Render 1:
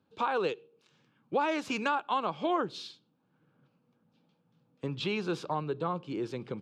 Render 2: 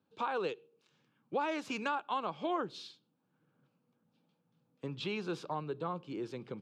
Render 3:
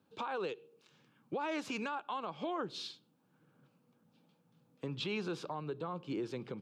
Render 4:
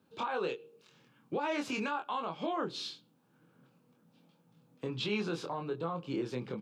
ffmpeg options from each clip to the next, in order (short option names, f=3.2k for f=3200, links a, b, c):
-af "highpass=95,volume=-5dB"
-af "alimiter=level_in=11dB:limit=-24dB:level=0:latency=1:release=234,volume=-11dB,volume=5.5dB"
-filter_complex "[0:a]asplit=2[a][b];[b]adelay=24,volume=-4dB[c];[a][c]amix=inputs=2:normalize=0,volume=2dB"